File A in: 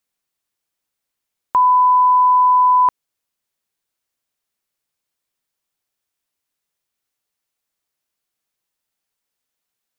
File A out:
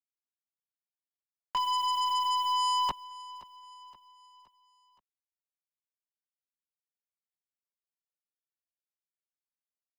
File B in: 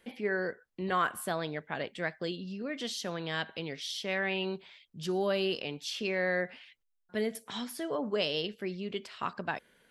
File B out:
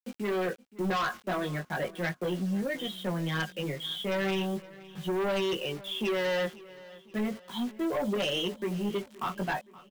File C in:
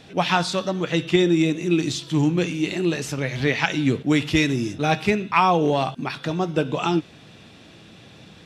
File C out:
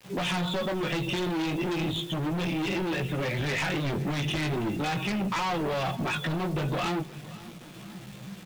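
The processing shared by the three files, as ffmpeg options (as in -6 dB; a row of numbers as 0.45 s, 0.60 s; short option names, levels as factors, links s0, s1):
-filter_complex "[0:a]afftdn=nr=14:nf=-35,aecho=1:1:5.5:0.51,acrossover=split=210|2000[s0][s1][s2];[s2]alimiter=limit=0.0944:level=0:latency=1:release=224[s3];[s0][s1][s3]amix=inputs=3:normalize=0,acrossover=split=120|3000[s4][s5][s6];[s5]acompressor=threshold=0.0794:ratio=5[s7];[s4][s7][s6]amix=inputs=3:normalize=0,aresample=8000,asoftclip=type=tanh:threshold=0.0422,aresample=44100,acrusher=bits=8:mix=0:aa=0.000001,flanger=delay=15:depth=6.4:speed=0.37,aeval=exprs='0.0596*(cos(1*acos(clip(val(0)/0.0596,-1,1)))-cos(1*PI/2))+0.0015*(cos(4*acos(clip(val(0)/0.0596,-1,1)))-cos(4*PI/2))+0.0188*(cos(5*acos(clip(val(0)/0.0596,-1,1)))-cos(5*PI/2))+0.00237*(cos(6*acos(clip(val(0)/0.0596,-1,1)))-cos(6*PI/2))':c=same,aecho=1:1:521|1042|1563|2084:0.1|0.05|0.025|0.0125,volume=1.26"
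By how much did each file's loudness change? -15.5 LU, +2.5 LU, -7.0 LU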